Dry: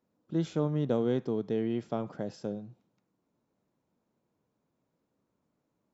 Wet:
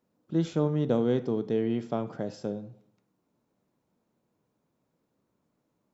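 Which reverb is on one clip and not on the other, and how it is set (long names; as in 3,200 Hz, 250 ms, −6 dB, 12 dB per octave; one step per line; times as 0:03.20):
dense smooth reverb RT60 0.69 s, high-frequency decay 0.7×, DRR 13 dB
level +2.5 dB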